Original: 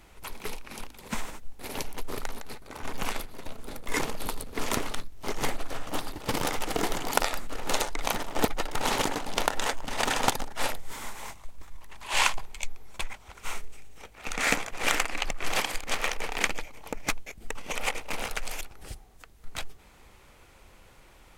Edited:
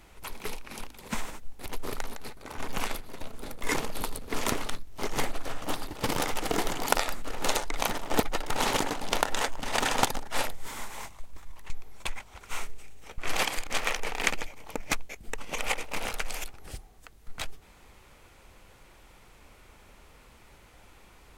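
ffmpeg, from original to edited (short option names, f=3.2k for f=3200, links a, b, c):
-filter_complex "[0:a]asplit=4[a][b][c][d];[a]atrim=end=1.662[e];[b]atrim=start=1.908:end=11.952[f];[c]atrim=start=12.638:end=14.122[g];[d]atrim=start=15.348[h];[e][f]acrossfade=d=0.004:c1=hsin:c2=hsin[i];[i][g]acrossfade=d=0.004:c1=hsin:c2=hsin[j];[j][h]acrossfade=d=0.004:c1=hsin:c2=hsin"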